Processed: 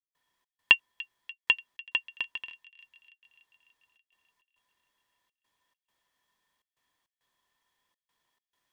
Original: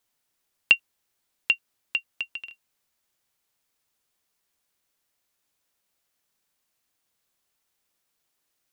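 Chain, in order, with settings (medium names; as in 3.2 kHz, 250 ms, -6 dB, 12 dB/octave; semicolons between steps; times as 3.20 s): treble shelf 6.1 kHz -10 dB; small resonant body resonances 1/1.8/3.3 kHz, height 16 dB, ringing for 45 ms; trance gate ".xx.xxxxx" 102 bpm; feedback echo behind a high-pass 292 ms, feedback 63%, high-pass 2.1 kHz, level -19.5 dB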